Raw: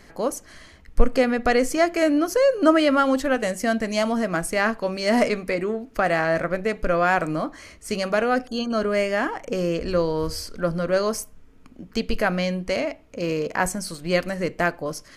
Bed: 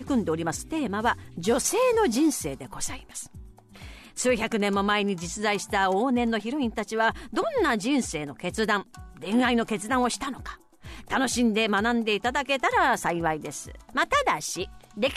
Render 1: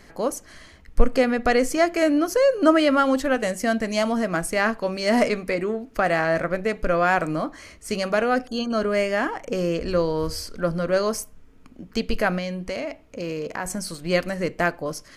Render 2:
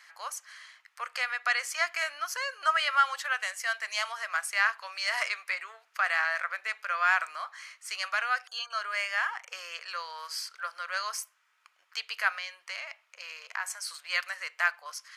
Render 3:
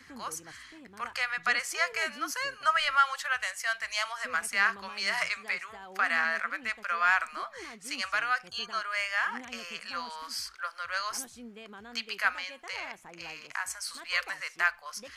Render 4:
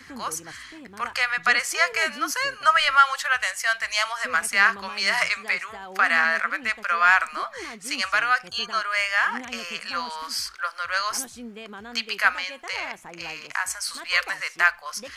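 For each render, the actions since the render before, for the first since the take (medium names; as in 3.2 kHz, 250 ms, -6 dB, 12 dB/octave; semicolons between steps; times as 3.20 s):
12.38–13.70 s: compression 2.5:1, threshold -27 dBFS
inverse Chebyshev high-pass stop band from 250 Hz, stop band 70 dB; treble shelf 6.7 kHz -7.5 dB
add bed -23.5 dB
trim +7.5 dB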